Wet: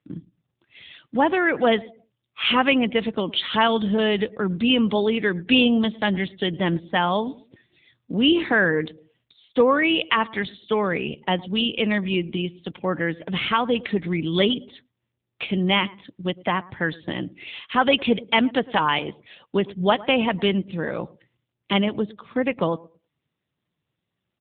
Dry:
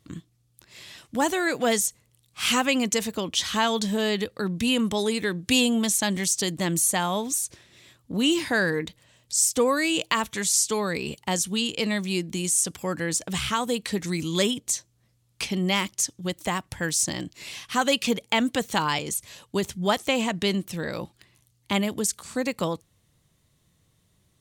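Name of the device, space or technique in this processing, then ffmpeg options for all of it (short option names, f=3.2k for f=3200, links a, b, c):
mobile call with aggressive noise cancelling: -filter_complex "[0:a]asettb=1/sr,asplit=3[a][b][c];[a]atrim=end=13.154[d];[b]atrim=start=13.15:end=13.88,asetpts=PTS-STARTPTS,afade=t=in:d=0.004:c=qsin,afade=t=out:st=0.726:d=0.004:c=qsin,equalizer=f=2.2k:w=3.2:g=3.5[e];[c]atrim=start=13.876[f];[d][e]acrossfade=d=0.004:c1=hsin:c2=qsin[g];[g][f]acrossfade=d=0.004:c1=qsin:c2=hsin,asettb=1/sr,asplit=3[h][i][j];[h]atrim=end=18.304[k];[i]atrim=start=18.3:end=19.55,asetpts=PTS-STARTPTS,afade=t=in:d=0.004:c=qsin,afade=t=out:st=1.246:d=0.004:c=qsin,highpass=f=110:p=1[l];[j]atrim=start=19.546[m];[k][l]acrossfade=d=0.004:c1=hsin:c2=qsin[n];[n][m]acrossfade=d=0.004:c1=qsin:c2=hsin,highpass=f=150:p=1,asplit=2[o][p];[p]adelay=109,lowpass=f=1.9k:p=1,volume=-20dB,asplit=2[q][r];[r]adelay=109,lowpass=f=1.9k:p=1,volume=0.36,asplit=2[s][t];[t]adelay=109,lowpass=f=1.9k:p=1,volume=0.36[u];[o][q][s][u]amix=inputs=4:normalize=0,afftdn=nr=15:nf=-48,volume=5.5dB" -ar 8000 -c:a libopencore_amrnb -b:a 7950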